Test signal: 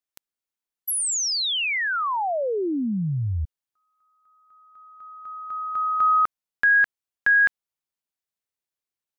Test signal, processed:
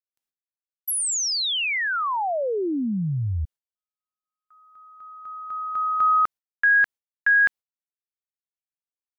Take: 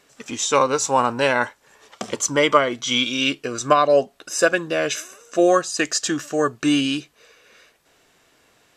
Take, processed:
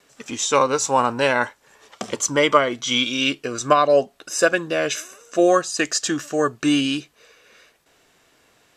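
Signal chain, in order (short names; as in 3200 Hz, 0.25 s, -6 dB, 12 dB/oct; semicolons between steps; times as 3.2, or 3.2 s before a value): gate with hold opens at -52 dBFS, hold 74 ms, range -34 dB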